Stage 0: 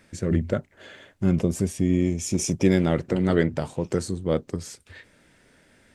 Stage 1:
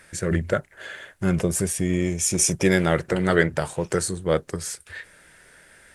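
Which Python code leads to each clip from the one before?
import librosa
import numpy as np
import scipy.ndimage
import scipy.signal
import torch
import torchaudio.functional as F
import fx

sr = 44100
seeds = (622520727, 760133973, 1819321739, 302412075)

y = fx.graphic_eq_15(x, sr, hz=(100, 250, 1600, 10000), db=(-6, -11, 7, 11))
y = y * librosa.db_to_amplitude(4.0)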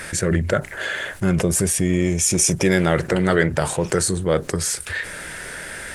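y = fx.env_flatten(x, sr, amount_pct=50)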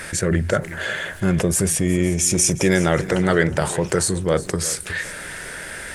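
y = fx.echo_feedback(x, sr, ms=364, feedback_pct=29, wet_db=-16.5)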